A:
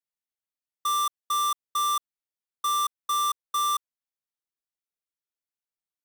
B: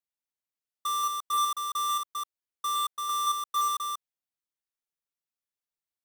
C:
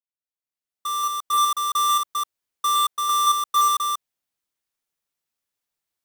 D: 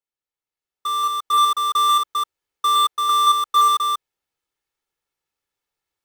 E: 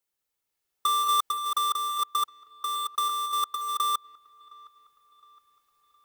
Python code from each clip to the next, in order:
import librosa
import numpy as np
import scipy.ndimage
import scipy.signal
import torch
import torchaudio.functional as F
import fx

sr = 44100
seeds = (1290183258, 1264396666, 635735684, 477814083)

y1 = fx.reverse_delay(x, sr, ms=172, wet_db=-3.5)
y1 = F.gain(torch.from_numpy(y1), -4.0).numpy()
y2 = fx.fade_in_head(y1, sr, length_s=1.71)
y2 = F.gain(torch.from_numpy(y2), 8.5).numpy()
y3 = fx.high_shelf(y2, sr, hz=4600.0, db=-9.5)
y3 = y3 + 0.43 * np.pad(y3, (int(2.3 * sr / 1000.0), 0))[:len(y3)]
y3 = F.gain(torch.from_numpy(y3), 4.5).numpy()
y4 = fx.high_shelf(y3, sr, hz=7500.0, db=8.0)
y4 = fx.over_compress(y4, sr, threshold_db=-25.0, ratio=-1.0)
y4 = fx.echo_wet_lowpass(y4, sr, ms=714, feedback_pct=44, hz=3100.0, wet_db=-23.0)
y4 = F.gain(torch.from_numpy(y4), -2.5).numpy()